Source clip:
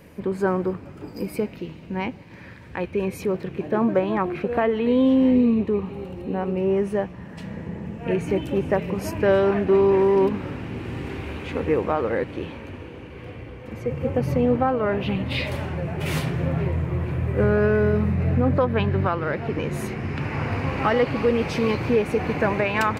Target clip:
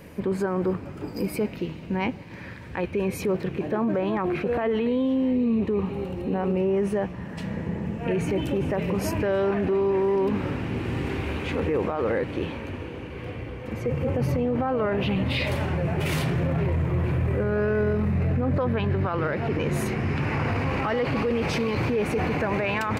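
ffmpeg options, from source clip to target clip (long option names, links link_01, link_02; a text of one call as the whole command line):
ffmpeg -i in.wav -af "alimiter=limit=-20.5dB:level=0:latency=1:release=15,volume=3dB" out.wav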